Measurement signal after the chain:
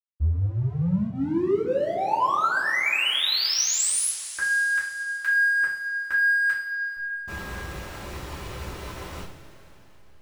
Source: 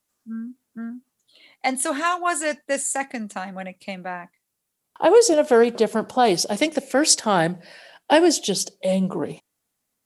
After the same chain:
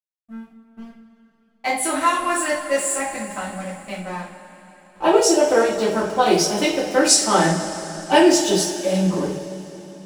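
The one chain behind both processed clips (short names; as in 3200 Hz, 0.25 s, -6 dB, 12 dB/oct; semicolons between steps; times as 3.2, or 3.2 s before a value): notch comb 240 Hz; backlash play -34.5 dBFS; two-slope reverb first 0.37 s, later 3.7 s, from -18 dB, DRR -7.5 dB; gain -3.5 dB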